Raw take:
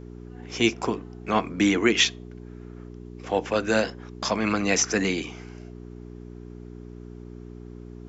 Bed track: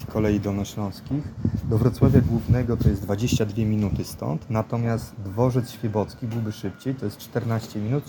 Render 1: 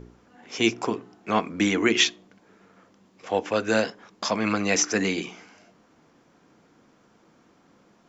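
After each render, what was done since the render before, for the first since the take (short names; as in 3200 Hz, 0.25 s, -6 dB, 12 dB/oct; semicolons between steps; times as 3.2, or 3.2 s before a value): de-hum 60 Hz, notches 7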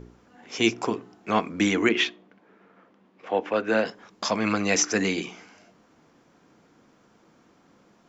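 1.89–3.86 three-band isolator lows -13 dB, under 160 Hz, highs -18 dB, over 3400 Hz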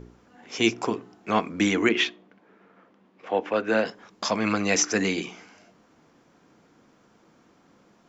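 nothing audible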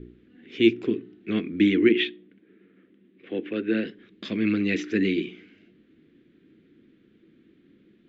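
EQ curve 160 Hz 0 dB, 360 Hz +6 dB, 580 Hz -15 dB, 900 Hz -28 dB, 1800 Hz -3 dB, 3700 Hz -2 dB, 5500 Hz -25 dB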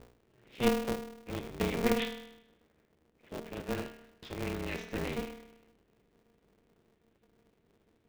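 resonator 170 Hz, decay 0.86 s, harmonics all, mix 80%; polarity switched at an audio rate 120 Hz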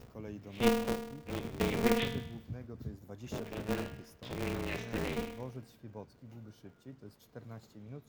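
add bed track -23 dB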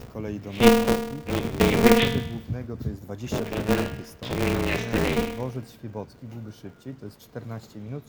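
gain +12 dB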